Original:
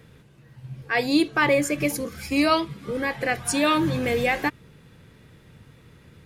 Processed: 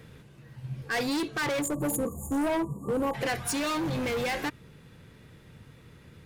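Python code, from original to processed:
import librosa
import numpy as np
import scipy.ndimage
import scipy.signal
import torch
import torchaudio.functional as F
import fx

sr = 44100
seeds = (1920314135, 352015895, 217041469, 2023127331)

y = fx.spec_erase(x, sr, start_s=1.62, length_s=1.52, low_hz=1200.0, high_hz=6600.0)
y = np.clip(y, -10.0 ** (-26.0 / 20.0), 10.0 ** (-26.0 / 20.0))
y = fx.rider(y, sr, range_db=10, speed_s=0.5)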